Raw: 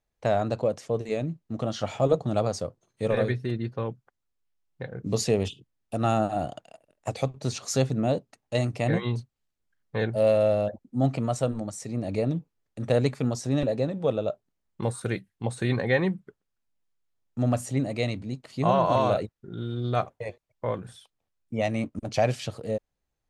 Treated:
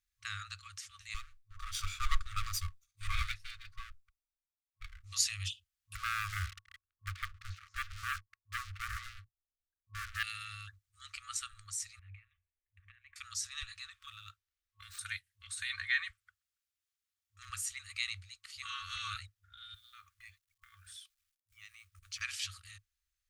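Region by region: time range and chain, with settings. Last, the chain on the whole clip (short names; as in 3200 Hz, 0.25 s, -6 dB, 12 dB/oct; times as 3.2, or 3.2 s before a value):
1.14–5.04 minimum comb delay 0.84 ms + low shelf 62 Hz +11.5 dB + three-band expander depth 40%
5.95–10.23 Chebyshev low-pass 720 Hz + low shelf 150 Hz +3.5 dB + sample leveller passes 3
11.99–13.16 LPF 1700 Hz + fixed phaser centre 1300 Hz, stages 6 + compressor 12:1, threshold -35 dBFS
13.98–14.99 median filter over 5 samples + compressor 2:1, threshold -26 dBFS
16.1–17.5 HPF 55 Hz + hard clip -17.5 dBFS
19.74–22.21 compressor 12:1, threshold -37 dBFS + companded quantiser 8-bit
whole clip: passive tone stack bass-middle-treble 5-5-5; FFT band-reject 100–1100 Hz; gain +7.5 dB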